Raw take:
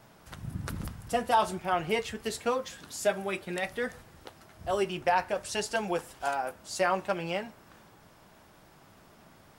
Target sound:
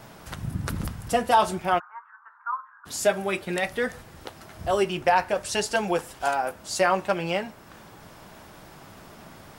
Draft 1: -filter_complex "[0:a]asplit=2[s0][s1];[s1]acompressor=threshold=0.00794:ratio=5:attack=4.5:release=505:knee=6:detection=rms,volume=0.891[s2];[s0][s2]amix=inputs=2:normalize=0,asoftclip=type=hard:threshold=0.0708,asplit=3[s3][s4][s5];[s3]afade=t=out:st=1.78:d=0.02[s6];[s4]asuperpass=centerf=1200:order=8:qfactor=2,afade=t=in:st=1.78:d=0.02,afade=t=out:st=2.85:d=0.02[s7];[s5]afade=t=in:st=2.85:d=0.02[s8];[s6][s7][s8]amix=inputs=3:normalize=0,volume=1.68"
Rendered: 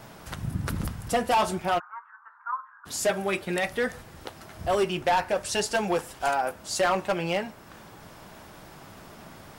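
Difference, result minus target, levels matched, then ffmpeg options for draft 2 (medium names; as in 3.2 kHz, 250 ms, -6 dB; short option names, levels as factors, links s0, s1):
hard clipper: distortion +38 dB
-filter_complex "[0:a]asplit=2[s0][s1];[s1]acompressor=threshold=0.00794:ratio=5:attack=4.5:release=505:knee=6:detection=rms,volume=0.891[s2];[s0][s2]amix=inputs=2:normalize=0,asoftclip=type=hard:threshold=0.2,asplit=3[s3][s4][s5];[s3]afade=t=out:st=1.78:d=0.02[s6];[s4]asuperpass=centerf=1200:order=8:qfactor=2,afade=t=in:st=1.78:d=0.02,afade=t=out:st=2.85:d=0.02[s7];[s5]afade=t=in:st=2.85:d=0.02[s8];[s6][s7][s8]amix=inputs=3:normalize=0,volume=1.68"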